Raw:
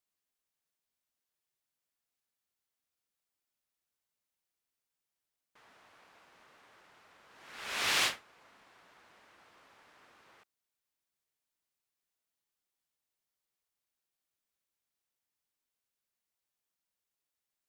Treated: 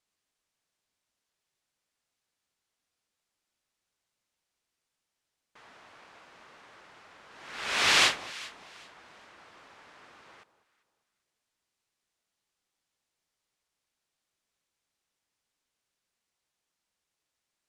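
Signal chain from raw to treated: low-pass 8.4 kHz 12 dB/octave; echo whose repeats swap between lows and highs 197 ms, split 1.1 kHz, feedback 51%, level -13.5 dB; trim +7.5 dB

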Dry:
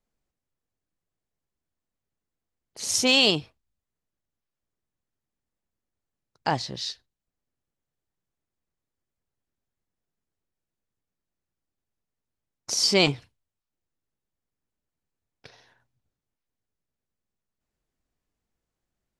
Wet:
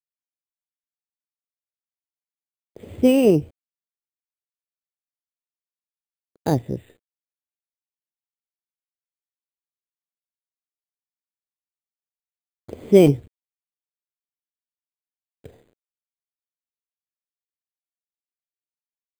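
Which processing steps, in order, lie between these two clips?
peaking EQ 81 Hz +11 dB 0.29 oct; bit crusher 9-bit; careless resampling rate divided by 8×, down filtered, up hold; resonant low shelf 670 Hz +13.5 dB, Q 1.5; trim -4.5 dB

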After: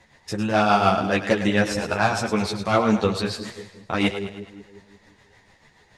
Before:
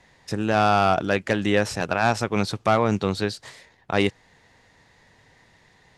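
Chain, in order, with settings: tremolo 6.9 Hz, depth 56%; two-band feedback delay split 500 Hz, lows 177 ms, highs 105 ms, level -10 dB; three-phase chorus; trim +6 dB

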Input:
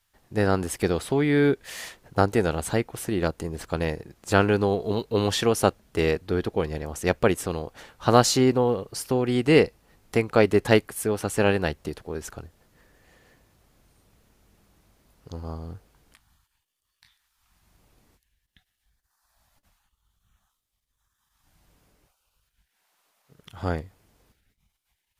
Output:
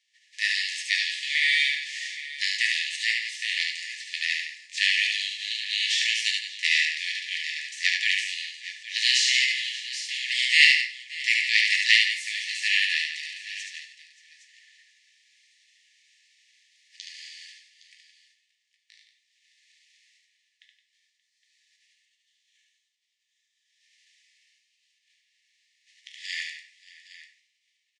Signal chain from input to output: spectral contrast reduction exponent 0.58; Bessel low-pass 4.8 kHz, order 8; tempo 0.9×; brick-wall FIR high-pass 1.7 kHz; multi-tap echo 72/168/578/814 ms -3.5/-11/-19/-15 dB; simulated room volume 72 m³, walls mixed, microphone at 0.45 m; trim +3.5 dB

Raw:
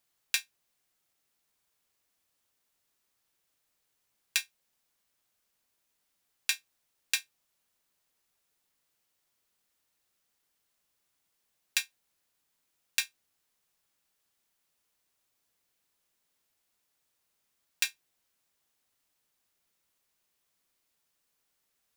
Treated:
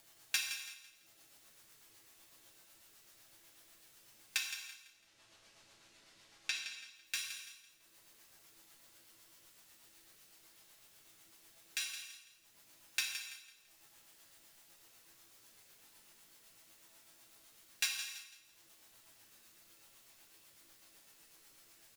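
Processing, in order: 4.37–6.55 s: low-pass 5.9 kHz 12 dB/octave; upward compressor, threshold -44 dBFS; saturation -16.5 dBFS, distortion -12 dB; chord resonator A2 major, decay 0.25 s; rotary cabinet horn 8 Hz; feedback delay 167 ms, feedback 34%, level -11 dB; gated-style reverb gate 400 ms falling, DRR 2.5 dB; trim +11 dB

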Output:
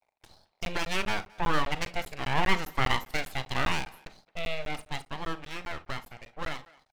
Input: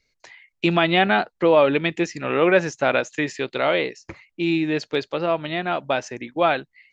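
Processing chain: Doppler pass-by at 3.01 s, 7 m/s, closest 8.9 m; bass shelf 190 Hz -6.5 dB; in parallel at -1 dB: compression, threshold -45 dBFS, peak gain reduction 28.5 dB; on the sum: full-wave rectifier; band noise 580–910 Hz -58 dBFS; crossover distortion -53 dBFS; speakerphone echo 220 ms, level -19 dB; on a send at -13 dB: reverberation RT60 0.20 s, pre-delay 35 ms; on the sum: crackling interface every 0.20 s, samples 512, zero; trim -4 dB

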